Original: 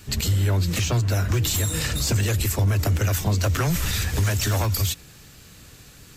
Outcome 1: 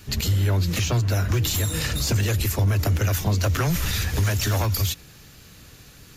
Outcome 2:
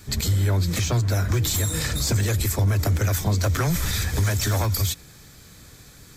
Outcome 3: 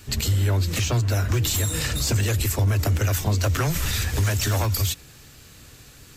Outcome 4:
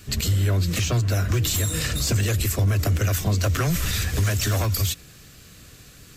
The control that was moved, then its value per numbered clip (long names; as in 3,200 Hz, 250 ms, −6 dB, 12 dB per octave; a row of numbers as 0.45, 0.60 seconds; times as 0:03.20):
notch filter, centre frequency: 8,000, 2,800, 180, 880 Hertz